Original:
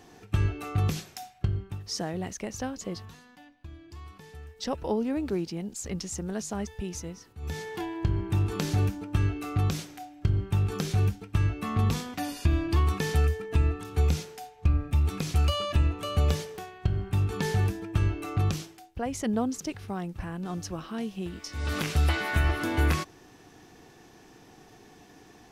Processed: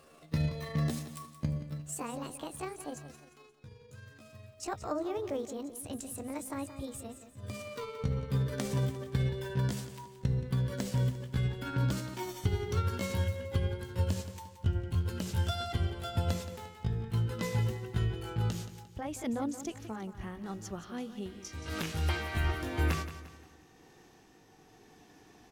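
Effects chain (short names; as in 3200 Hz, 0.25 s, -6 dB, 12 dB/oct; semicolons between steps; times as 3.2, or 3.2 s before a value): gliding pitch shift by +7.5 st ending unshifted; feedback echo 0.175 s, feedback 40%, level -12.5 dB; gain -5 dB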